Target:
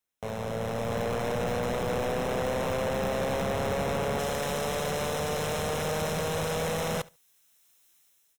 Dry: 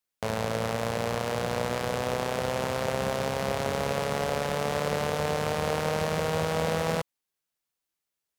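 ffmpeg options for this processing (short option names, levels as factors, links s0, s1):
-af "asetnsamples=n=441:p=0,asendcmd='4.19 highshelf g 10.5',highshelf=f=2400:g=-2,acontrast=90,alimiter=limit=0.266:level=0:latency=1,dynaudnorm=f=320:g=5:m=5.96,asoftclip=type=tanh:threshold=0.112,asuperstop=centerf=4600:order=8:qfactor=6.7,aecho=1:1:71|142:0.0794|0.0135,volume=0.473"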